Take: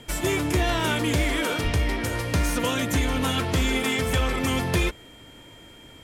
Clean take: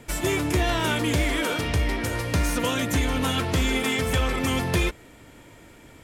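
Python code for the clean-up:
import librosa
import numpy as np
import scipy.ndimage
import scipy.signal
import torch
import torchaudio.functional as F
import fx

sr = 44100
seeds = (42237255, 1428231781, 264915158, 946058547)

y = fx.notch(x, sr, hz=3200.0, q=30.0)
y = fx.fix_deplosive(y, sr, at_s=(1.63,))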